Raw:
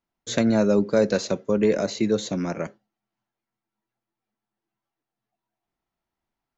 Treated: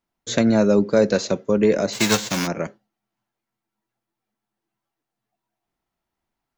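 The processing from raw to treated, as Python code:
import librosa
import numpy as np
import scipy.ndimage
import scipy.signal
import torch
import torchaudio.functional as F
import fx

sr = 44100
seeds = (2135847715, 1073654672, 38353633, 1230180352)

y = fx.envelope_flatten(x, sr, power=0.3, at=(1.92, 2.46), fade=0.02)
y = y * librosa.db_to_amplitude(3.0)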